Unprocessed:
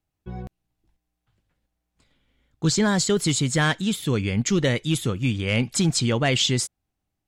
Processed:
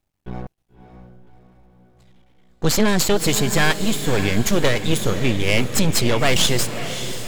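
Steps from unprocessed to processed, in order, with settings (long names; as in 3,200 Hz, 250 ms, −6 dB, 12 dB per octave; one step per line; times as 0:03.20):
half-wave rectification
feedback delay with all-pass diffusion 578 ms, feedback 50%, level −10 dB
level +8 dB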